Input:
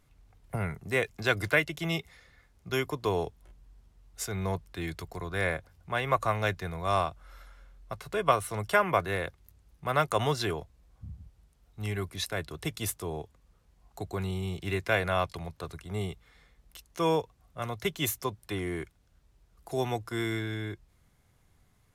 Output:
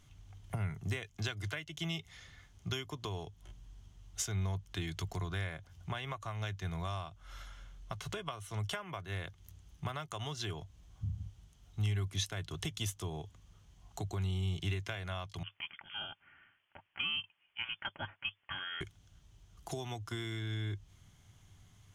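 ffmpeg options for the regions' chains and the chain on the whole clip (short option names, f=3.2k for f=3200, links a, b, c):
-filter_complex "[0:a]asettb=1/sr,asplit=3[a][b][c];[a]atrim=end=15.434[d];[b]atrim=start=15.43:end=18.81,asetpts=PTS-STARTPTS,afade=t=in:d=0.004:c=qsin,afade=t=out:st=3.376:d=0.004:c=qsin,highpass=1.2k,lowpass=f=3.1k:t=q:w=0.5098,lowpass=f=3.1k:t=q:w=0.6013,lowpass=f=3.1k:t=q:w=0.9,lowpass=f=3.1k:t=q:w=2.563,afreqshift=-3600[e];[c]atrim=start=18.806[f];[d][e]acrossfade=d=0.004:c1=hsin:c2=qsin[g];[g][f]acrossfade=d=0.004:c1=qsin:c2=hsin,acompressor=threshold=-39dB:ratio=16,equalizer=f=100:t=o:w=0.33:g=11,equalizer=f=160:t=o:w=0.33:g=4,equalizer=f=500:t=o:w=0.33:g=-8,equalizer=f=3.15k:t=o:w=0.33:g=11,equalizer=f=6.3k:t=o:w=0.33:g=10,equalizer=f=12.5k:t=o:w=0.33:g=-5,volume=1.5dB"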